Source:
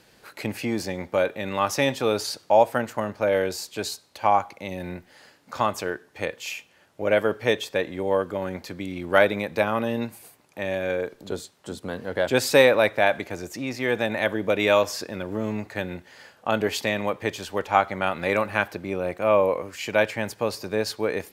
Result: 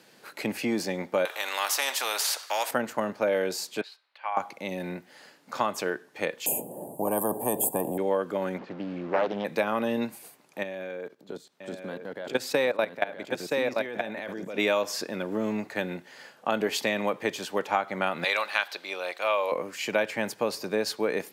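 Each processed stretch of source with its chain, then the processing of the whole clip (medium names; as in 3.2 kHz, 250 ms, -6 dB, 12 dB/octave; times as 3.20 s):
1.25–2.71 s: high-pass 730 Hz 24 dB/octave + spectrum-flattening compressor 2:1
3.81–4.37 s: high-pass 1.5 kHz + distance through air 430 m
6.46–7.98 s: inverse Chebyshev band-stop 1.3–6 kHz + spectrum-flattening compressor 4:1
8.58–9.45 s: one-bit delta coder 64 kbps, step -32 dBFS + tape spacing loss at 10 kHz 44 dB + loudspeaker Doppler distortion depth 0.43 ms
10.63–14.58 s: peaking EQ 9.4 kHz -4.5 dB 1.3 oct + level held to a coarse grid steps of 18 dB + delay 973 ms -6.5 dB
18.24–19.52 s: high-pass 750 Hz + peaking EQ 3.9 kHz +13 dB 0.92 oct
whole clip: high-pass 150 Hz 24 dB/octave; compression 6:1, threshold -21 dBFS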